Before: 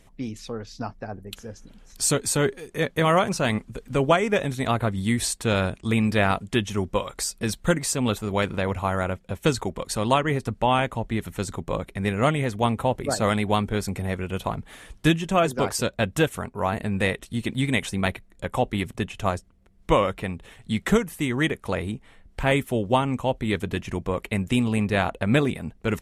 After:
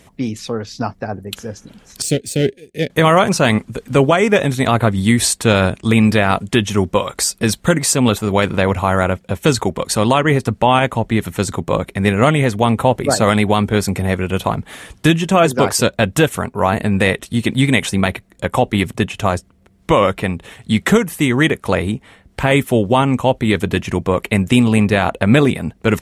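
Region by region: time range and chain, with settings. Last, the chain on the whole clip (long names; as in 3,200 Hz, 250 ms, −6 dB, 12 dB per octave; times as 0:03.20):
0:02.02–0:02.90: bass and treble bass −1 dB, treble −7 dB + power curve on the samples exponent 1.4 + Butterworth band-reject 1,100 Hz, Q 0.62
whole clip: high-pass filter 72 Hz; boost into a limiter +11.5 dB; level −1 dB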